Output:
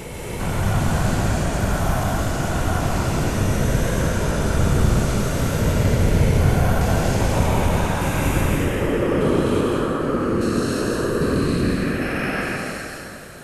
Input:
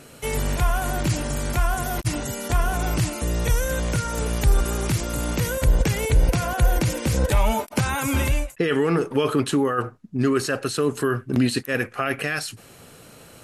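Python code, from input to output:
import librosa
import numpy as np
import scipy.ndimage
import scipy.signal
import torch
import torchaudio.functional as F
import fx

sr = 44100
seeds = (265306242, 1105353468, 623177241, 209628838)

y = fx.spec_steps(x, sr, hold_ms=400)
y = fx.whisperise(y, sr, seeds[0])
y = fx.rev_plate(y, sr, seeds[1], rt60_s=3.0, hf_ratio=0.65, predelay_ms=120, drr_db=-4.0)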